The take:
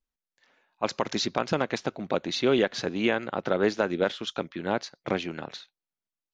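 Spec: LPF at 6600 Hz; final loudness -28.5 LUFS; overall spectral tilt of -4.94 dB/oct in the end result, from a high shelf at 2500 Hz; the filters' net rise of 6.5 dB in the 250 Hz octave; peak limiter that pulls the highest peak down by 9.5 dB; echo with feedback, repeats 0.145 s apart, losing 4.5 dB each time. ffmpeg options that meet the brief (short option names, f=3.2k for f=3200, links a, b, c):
-af "lowpass=6.6k,equalizer=f=250:t=o:g=8.5,highshelf=f=2.5k:g=-6,alimiter=limit=-17.5dB:level=0:latency=1,aecho=1:1:145|290|435|580|725|870|1015|1160|1305:0.596|0.357|0.214|0.129|0.0772|0.0463|0.0278|0.0167|0.01"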